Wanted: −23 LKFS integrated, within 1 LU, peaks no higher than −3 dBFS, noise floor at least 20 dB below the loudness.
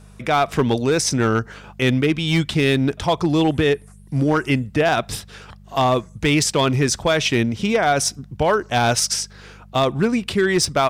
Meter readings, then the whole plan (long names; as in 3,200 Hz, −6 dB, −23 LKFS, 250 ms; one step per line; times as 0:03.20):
share of clipped samples 0.8%; peaks flattened at −10.5 dBFS; mains hum 50 Hz; hum harmonics up to 200 Hz; level of the hum −43 dBFS; integrated loudness −19.5 LKFS; sample peak −10.5 dBFS; target loudness −23.0 LKFS
→ clipped peaks rebuilt −10.5 dBFS
hum removal 50 Hz, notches 4
level −3.5 dB